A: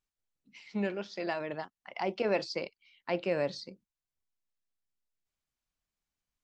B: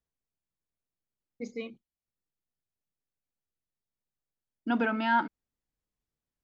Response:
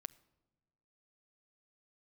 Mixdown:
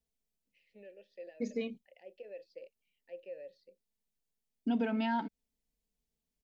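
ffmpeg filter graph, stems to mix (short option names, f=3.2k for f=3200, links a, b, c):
-filter_complex "[0:a]alimiter=level_in=1.5dB:limit=-24dB:level=0:latency=1:release=309,volume=-1.5dB,asplit=3[a][b][c];[a]bandpass=f=530:t=q:w=8,volume=0dB[d];[b]bandpass=f=1.84k:t=q:w=8,volume=-6dB[e];[c]bandpass=f=2.48k:t=q:w=8,volume=-9dB[f];[d][e][f]amix=inputs=3:normalize=0,volume=-4dB[g];[1:a]aecho=1:1:4.5:0.77,volume=1dB[h];[g][h]amix=inputs=2:normalize=0,equalizer=f=1.3k:w=1.6:g=-13.5,acompressor=threshold=-32dB:ratio=2.5"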